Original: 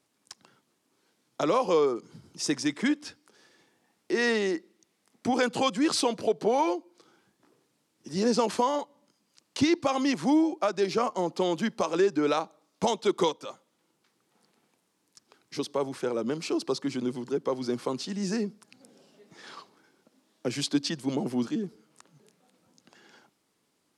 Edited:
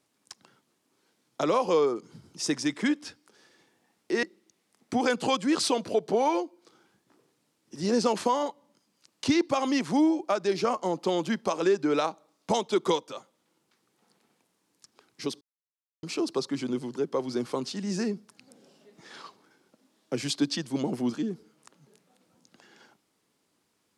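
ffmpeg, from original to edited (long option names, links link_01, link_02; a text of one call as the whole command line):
ffmpeg -i in.wav -filter_complex "[0:a]asplit=4[link_01][link_02][link_03][link_04];[link_01]atrim=end=4.232[link_05];[link_02]atrim=start=4.558:end=15.74,asetpts=PTS-STARTPTS,afade=type=out:start_time=11.178:duration=0.004:curve=hsin[link_06];[link_03]atrim=start=15.74:end=16.36,asetpts=PTS-STARTPTS,volume=0[link_07];[link_04]atrim=start=16.36,asetpts=PTS-STARTPTS,afade=type=in:duration=0.004:curve=hsin[link_08];[link_06][link_07][link_08]concat=n=3:v=0:a=1[link_09];[link_05][link_09]acrossfade=duration=0.004:curve1=hsin:curve2=hsin" out.wav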